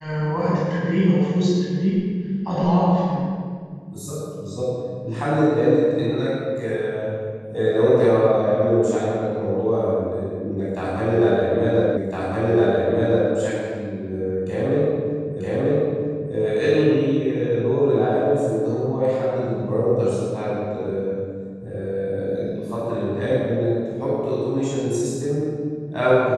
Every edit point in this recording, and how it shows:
11.97 s: repeat of the last 1.36 s
15.40 s: repeat of the last 0.94 s

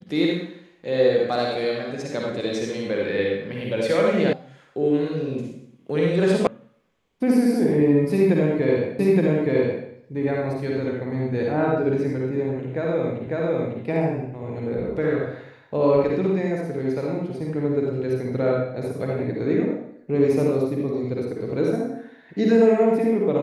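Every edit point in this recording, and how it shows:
4.33 s: sound stops dead
6.47 s: sound stops dead
8.99 s: repeat of the last 0.87 s
13.27 s: repeat of the last 0.55 s

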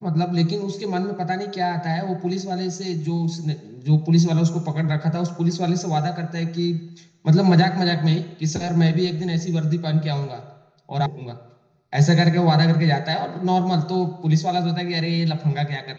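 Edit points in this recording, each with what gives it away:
11.06 s: sound stops dead

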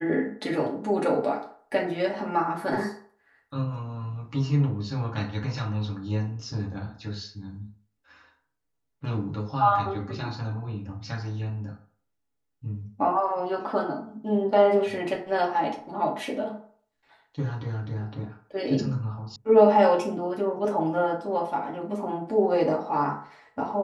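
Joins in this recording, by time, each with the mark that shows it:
19.36 s: sound stops dead

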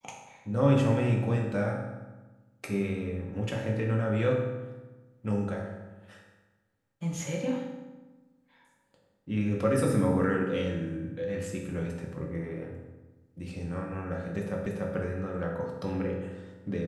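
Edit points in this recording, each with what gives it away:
14.66 s: repeat of the last 0.29 s

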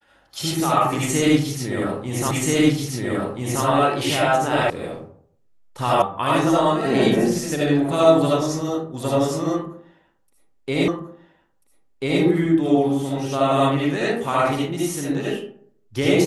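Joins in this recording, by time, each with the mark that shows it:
2.31 s: repeat of the last 1.33 s
4.70 s: sound stops dead
6.02 s: sound stops dead
10.88 s: repeat of the last 1.34 s

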